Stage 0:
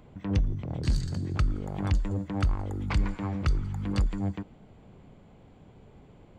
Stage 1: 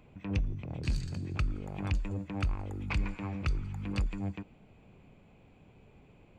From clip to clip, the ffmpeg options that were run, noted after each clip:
-af "equalizer=f=2.5k:t=o:w=0.26:g=13,volume=-5.5dB"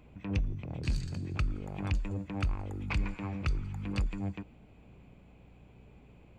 -af "aeval=exprs='val(0)+0.00126*(sin(2*PI*60*n/s)+sin(2*PI*2*60*n/s)/2+sin(2*PI*3*60*n/s)/3+sin(2*PI*4*60*n/s)/4+sin(2*PI*5*60*n/s)/5)':c=same"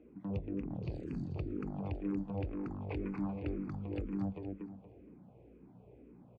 -filter_complex "[0:a]bandpass=f=350:t=q:w=1.3:csg=0,asplit=2[a][b];[b]aecho=0:1:234|468|702|936:0.631|0.202|0.0646|0.0207[c];[a][c]amix=inputs=2:normalize=0,asplit=2[d][e];[e]afreqshift=-2[f];[d][f]amix=inputs=2:normalize=1,volume=6.5dB"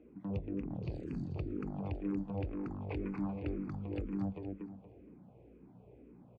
-af anull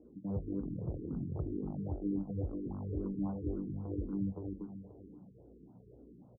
-filter_complex "[0:a]adynamicsmooth=sensitivity=7:basefreq=1.7k,asplit=2[a][b];[b]adelay=530.6,volume=-14dB,highshelf=f=4k:g=-11.9[c];[a][c]amix=inputs=2:normalize=0,afftfilt=real='re*lt(b*sr/1024,440*pow(1600/440,0.5+0.5*sin(2*PI*3.7*pts/sr)))':imag='im*lt(b*sr/1024,440*pow(1600/440,0.5+0.5*sin(2*PI*3.7*pts/sr)))':win_size=1024:overlap=0.75,volume=1dB"

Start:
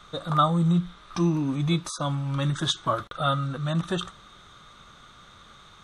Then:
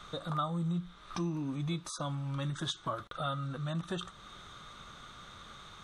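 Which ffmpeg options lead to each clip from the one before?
-af "acompressor=threshold=-41dB:ratio=2"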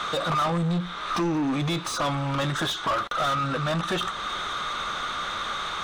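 -filter_complex "[0:a]asubboost=boost=4.5:cutoff=51,asplit=2[a][b];[b]highpass=f=720:p=1,volume=28dB,asoftclip=type=tanh:threshold=-21dB[c];[a][c]amix=inputs=2:normalize=0,lowpass=f=2.6k:p=1,volume=-6dB,volume=4dB"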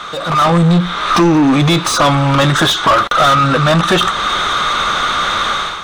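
-af "dynaudnorm=f=140:g=5:m=12dB,volume=3dB"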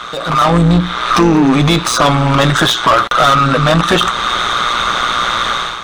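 -af "tremolo=f=120:d=0.571,volume=3dB"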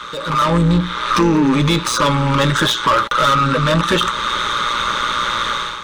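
-af "asuperstop=centerf=720:order=20:qfactor=4.1,volume=-4dB"

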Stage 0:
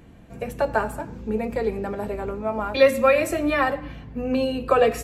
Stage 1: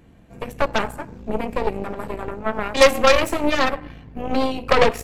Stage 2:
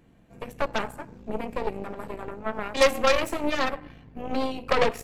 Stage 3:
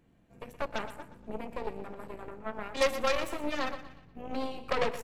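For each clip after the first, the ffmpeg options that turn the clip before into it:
-af "aeval=exprs='0.668*(cos(1*acos(clip(val(0)/0.668,-1,1)))-cos(1*PI/2))+0.188*(cos(6*acos(clip(val(0)/0.668,-1,1)))-cos(6*PI/2))+0.0376*(cos(7*acos(clip(val(0)/0.668,-1,1)))-cos(7*PI/2))+0.237*(cos(8*acos(clip(val(0)/0.668,-1,1)))-cos(8*PI/2))':c=same,volume=2dB"
-af "equalizer=f=68:t=o:w=0.5:g=-8.5,volume=-6.5dB"
-af "aecho=1:1:120|240|360|480:0.224|0.0828|0.0306|0.0113,volume=-7.5dB"

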